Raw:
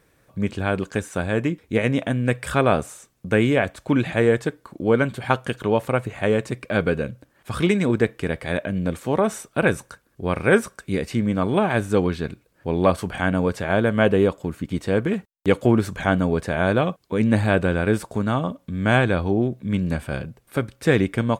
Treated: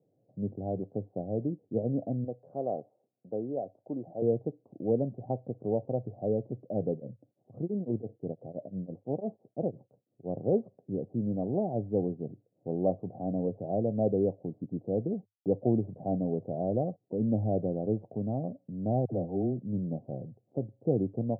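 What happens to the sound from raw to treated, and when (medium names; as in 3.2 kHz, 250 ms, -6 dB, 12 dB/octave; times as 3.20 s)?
2.24–4.22 s: high-pass 610 Hz 6 dB/octave
6.92–10.34 s: tremolo of two beating tones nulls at 5.9 Hz
19.05–19.60 s: phase dispersion lows, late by 65 ms, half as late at 830 Hz
whole clip: Chebyshev band-pass 100–750 Hz, order 5; trim -8.5 dB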